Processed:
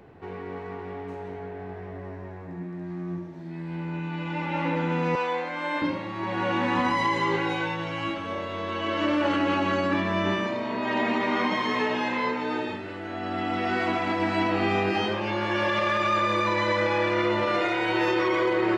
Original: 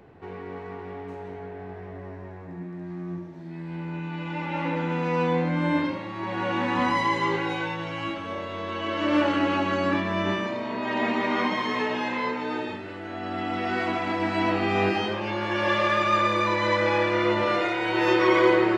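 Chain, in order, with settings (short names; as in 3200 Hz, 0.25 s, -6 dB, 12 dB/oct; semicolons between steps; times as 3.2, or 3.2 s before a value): 5.15–5.82 HPF 590 Hz 12 dB/oct; limiter -16.5 dBFS, peak gain reduction 9 dB; gain +1 dB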